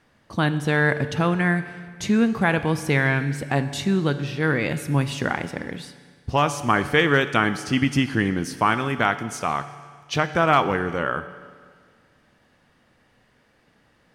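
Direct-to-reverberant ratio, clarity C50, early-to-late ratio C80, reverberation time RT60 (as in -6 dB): 11.0 dB, 12.0 dB, 13.5 dB, 1.8 s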